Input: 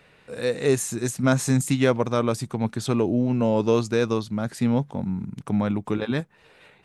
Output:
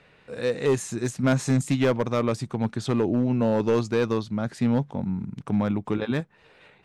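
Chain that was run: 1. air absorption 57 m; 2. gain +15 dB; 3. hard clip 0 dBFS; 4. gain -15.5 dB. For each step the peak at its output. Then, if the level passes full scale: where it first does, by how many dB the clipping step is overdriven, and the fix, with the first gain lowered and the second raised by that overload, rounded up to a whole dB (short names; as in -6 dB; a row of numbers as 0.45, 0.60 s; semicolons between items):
-7.5, +7.5, 0.0, -15.5 dBFS; step 2, 7.5 dB; step 2 +7 dB, step 4 -7.5 dB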